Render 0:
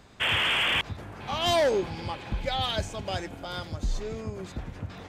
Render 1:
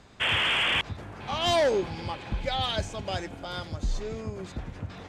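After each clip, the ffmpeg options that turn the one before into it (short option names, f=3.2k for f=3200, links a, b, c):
-af "lowpass=10k"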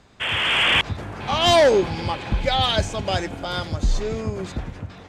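-af "dynaudnorm=f=150:g=7:m=8.5dB"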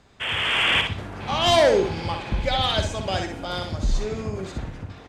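-af "aecho=1:1:62|124|186|248:0.501|0.155|0.0482|0.0149,volume=-3dB"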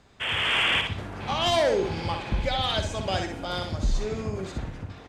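-af "alimiter=limit=-14dB:level=0:latency=1:release=185,volume=-1.5dB"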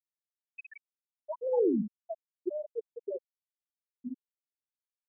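-af "highpass=f=350:t=q:w=0.5412,highpass=f=350:t=q:w=1.307,lowpass=f=2.8k:t=q:w=0.5176,lowpass=f=2.8k:t=q:w=0.7071,lowpass=f=2.8k:t=q:w=1.932,afreqshift=-180,afftfilt=real='re*gte(hypot(re,im),0.316)':imag='im*gte(hypot(re,im),0.316)':win_size=1024:overlap=0.75,volume=-2.5dB"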